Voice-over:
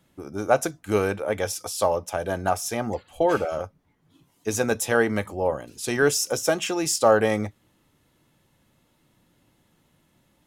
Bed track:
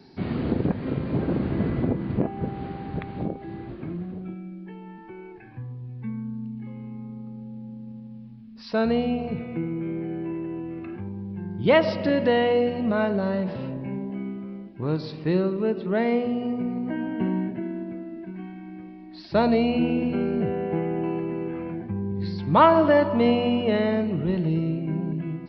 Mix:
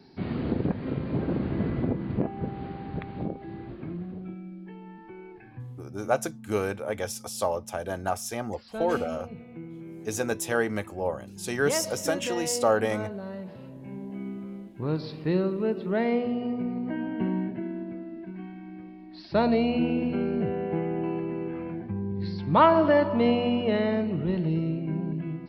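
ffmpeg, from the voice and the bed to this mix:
-filter_complex "[0:a]adelay=5600,volume=-5dB[a];[1:a]volume=6.5dB,afade=t=out:st=5.56:d=0.51:silence=0.354813,afade=t=in:st=13.74:d=0.62:silence=0.334965[b];[a][b]amix=inputs=2:normalize=0"

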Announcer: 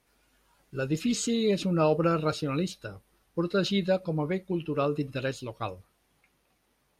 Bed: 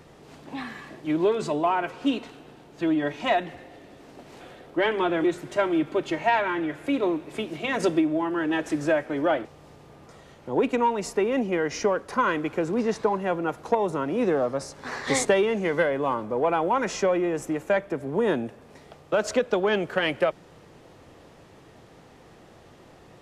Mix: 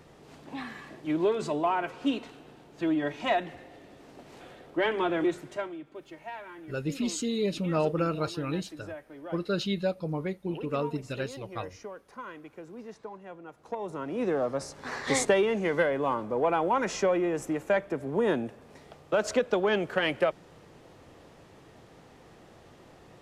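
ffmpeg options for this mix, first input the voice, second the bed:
-filter_complex "[0:a]adelay=5950,volume=-3dB[a];[1:a]volume=12.5dB,afade=t=out:st=5.29:d=0.48:silence=0.177828,afade=t=in:st=13.54:d=1.07:silence=0.158489[b];[a][b]amix=inputs=2:normalize=0"

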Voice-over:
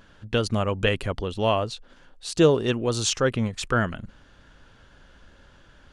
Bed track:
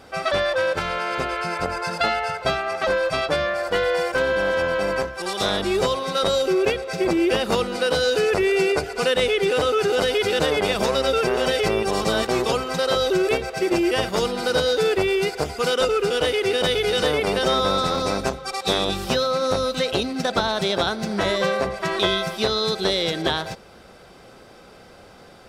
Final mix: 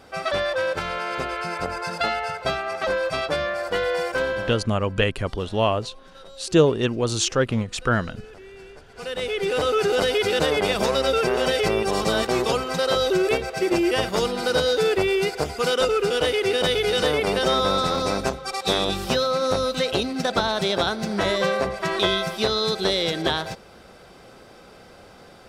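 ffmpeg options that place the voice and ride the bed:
-filter_complex "[0:a]adelay=4150,volume=1.5dB[a];[1:a]volume=21.5dB,afade=t=out:st=4.23:d=0.44:silence=0.0794328,afade=t=in:st=8.86:d=0.9:silence=0.0630957[b];[a][b]amix=inputs=2:normalize=0"

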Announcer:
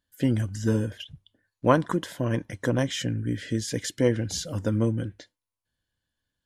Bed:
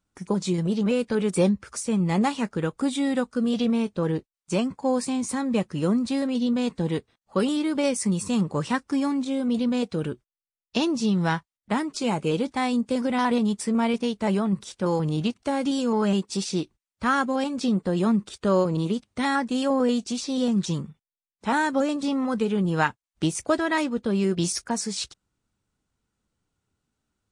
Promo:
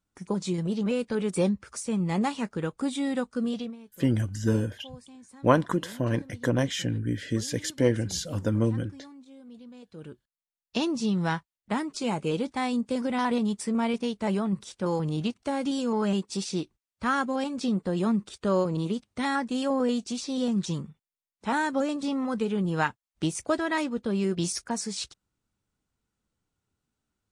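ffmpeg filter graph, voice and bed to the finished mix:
-filter_complex "[0:a]adelay=3800,volume=-0.5dB[a];[1:a]volume=15.5dB,afade=t=out:st=3.45:d=0.31:silence=0.112202,afade=t=in:st=9.85:d=0.93:silence=0.105925[b];[a][b]amix=inputs=2:normalize=0"

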